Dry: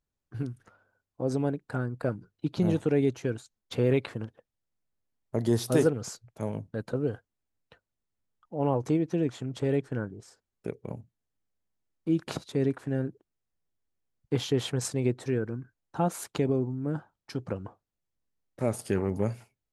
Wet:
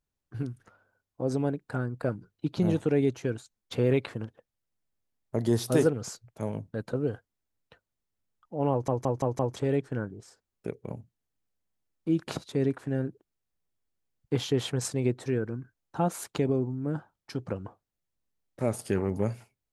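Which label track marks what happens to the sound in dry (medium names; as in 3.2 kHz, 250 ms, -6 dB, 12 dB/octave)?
8.710000	8.710000	stutter in place 0.17 s, 5 plays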